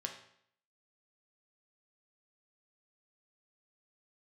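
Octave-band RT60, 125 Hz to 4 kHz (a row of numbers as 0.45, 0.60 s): 0.65, 0.65, 0.65, 0.65, 0.65, 0.60 s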